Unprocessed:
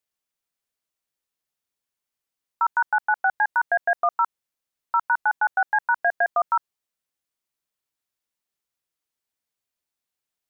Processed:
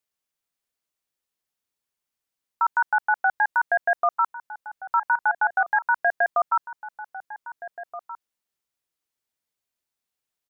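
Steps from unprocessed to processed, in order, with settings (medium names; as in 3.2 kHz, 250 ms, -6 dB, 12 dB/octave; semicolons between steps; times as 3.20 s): echo from a far wall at 270 m, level -12 dB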